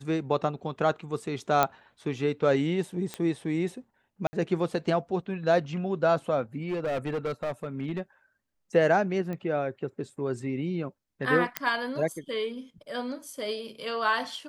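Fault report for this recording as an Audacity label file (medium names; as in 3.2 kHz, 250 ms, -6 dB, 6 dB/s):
1.630000	1.630000	pop -8 dBFS
3.140000	3.140000	pop -18 dBFS
4.270000	4.330000	dropout 60 ms
6.680000	8.010000	clipped -26 dBFS
9.330000	9.330000	pop -24 dBFS
11.570000	11.570000	pop -10 dBFS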